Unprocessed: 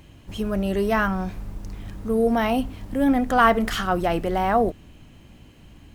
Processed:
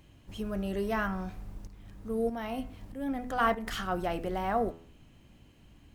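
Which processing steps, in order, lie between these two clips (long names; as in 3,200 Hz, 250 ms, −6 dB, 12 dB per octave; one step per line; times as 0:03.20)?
hum removal 82.86 Hz, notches 33
0:01.67–0:03.67: shaped tremolo saw up 1.6 Hz, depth 60%
level −9 dB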